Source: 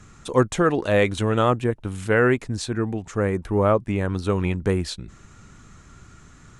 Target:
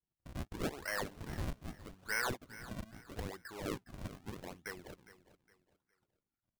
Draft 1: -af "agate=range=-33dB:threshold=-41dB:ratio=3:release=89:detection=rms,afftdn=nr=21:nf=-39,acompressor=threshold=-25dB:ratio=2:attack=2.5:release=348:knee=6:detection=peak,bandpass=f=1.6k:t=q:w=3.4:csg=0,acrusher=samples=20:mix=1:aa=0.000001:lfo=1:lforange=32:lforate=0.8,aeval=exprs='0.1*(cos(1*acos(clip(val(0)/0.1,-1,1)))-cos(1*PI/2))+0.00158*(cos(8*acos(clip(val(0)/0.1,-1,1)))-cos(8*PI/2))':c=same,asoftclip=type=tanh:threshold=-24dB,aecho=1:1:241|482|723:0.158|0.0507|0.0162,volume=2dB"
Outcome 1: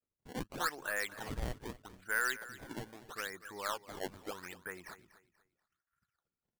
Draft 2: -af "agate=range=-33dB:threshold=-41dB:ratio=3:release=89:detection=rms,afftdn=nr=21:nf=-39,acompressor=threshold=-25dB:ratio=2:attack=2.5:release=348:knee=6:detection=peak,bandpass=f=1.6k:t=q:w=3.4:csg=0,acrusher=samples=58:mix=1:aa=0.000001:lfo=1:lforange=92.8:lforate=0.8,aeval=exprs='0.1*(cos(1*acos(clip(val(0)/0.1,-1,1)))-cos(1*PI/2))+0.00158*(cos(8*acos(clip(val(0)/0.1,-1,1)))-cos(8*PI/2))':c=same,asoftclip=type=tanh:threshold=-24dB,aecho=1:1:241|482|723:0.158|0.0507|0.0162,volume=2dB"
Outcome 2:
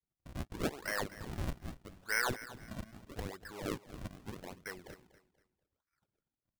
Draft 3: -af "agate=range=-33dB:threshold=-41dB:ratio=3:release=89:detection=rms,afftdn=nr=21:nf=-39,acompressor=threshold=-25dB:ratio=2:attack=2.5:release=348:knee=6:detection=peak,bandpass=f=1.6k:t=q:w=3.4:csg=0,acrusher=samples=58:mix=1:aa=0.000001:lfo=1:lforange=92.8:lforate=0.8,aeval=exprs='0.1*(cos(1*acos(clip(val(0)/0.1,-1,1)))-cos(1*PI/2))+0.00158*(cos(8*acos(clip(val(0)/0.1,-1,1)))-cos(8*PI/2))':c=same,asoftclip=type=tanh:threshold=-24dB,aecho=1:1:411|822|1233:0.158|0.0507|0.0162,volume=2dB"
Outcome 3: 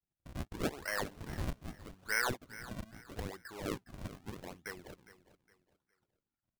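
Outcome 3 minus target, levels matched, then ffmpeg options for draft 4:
soft clip: distortion -9 dB
-af "agate=range=-33dB:threshold=-41dB:ratio=3:release=89:detection=rms,afftdn=nr=21:nf=-39,acompressor=threshold=-25dB:ratio=2:attack=2.5:release=348:knee=6:detection=peak,bandpass=f=1.6k:t=q:w=3.4:csg=0,acrusher=samples=58:mix=1:aa=0.000001:lfo=1:lforange=92.8:lforate=0.8,aeval=exprs='0.1*(cos(1*acos(clip(val(0)/0.1,-1,1)))-cos(1*PI/2))+0.00158*(cos(8*acos(clip(val(0)/0.1,-1,1)))-cos(8*PI/2))':c=same,asoftclip=type=tanh:threshold=-31dB,aecho=1:1:411|822|1233:0.158|0.0507|0.0162,volume=2dB"

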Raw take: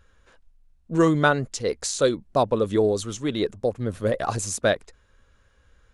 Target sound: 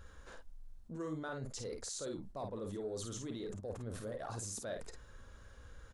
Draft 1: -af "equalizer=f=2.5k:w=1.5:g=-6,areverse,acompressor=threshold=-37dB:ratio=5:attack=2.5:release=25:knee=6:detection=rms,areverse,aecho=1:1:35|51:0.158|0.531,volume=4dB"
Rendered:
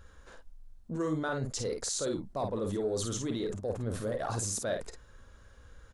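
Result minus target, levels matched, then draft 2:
compressor: peak gain reduction -9 dB
-af "equalizer=f=2.5k:w=1.5:g=-6,areverse,acompressor=threshold=-48.5dB:ratio=5:attack=2.5:release=25:knee=6:detection=rms,areverse,aecho=1:1:35|51:0.158|0.531,volume=4dB"

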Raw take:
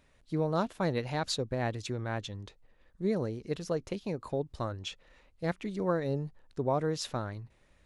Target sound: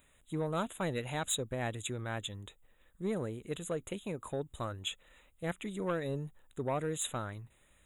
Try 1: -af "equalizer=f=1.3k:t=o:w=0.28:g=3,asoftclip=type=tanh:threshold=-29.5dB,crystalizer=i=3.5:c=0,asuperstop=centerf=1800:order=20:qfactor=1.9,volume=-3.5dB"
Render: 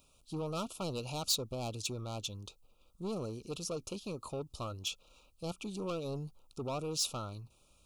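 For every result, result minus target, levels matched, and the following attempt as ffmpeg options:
2000 Hz band -8.0 dB; soft clip: distortion +9 dB
-af "equalizer=f=1.3k:t=o:w=0.28:g=3,asoftclip=type=tanh:threshold=-29.5dB,crystalizer=i=3.5:c=0,asuperstop=centerf=5100:order=20:qfactor=1.9,volume=-3.5dB"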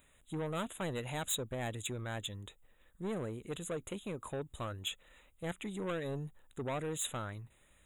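soft clip: distortion +9 dB
-af "equalizer=f=1.3k:t=o:w=0.28:g=3,asoftclip=type=tanh:threshold=-22dB,crystalizer=i=3.5:c=0,asuperstop=centerf=5100:order=20:qfactor=1.9,volume=-3.5dB"

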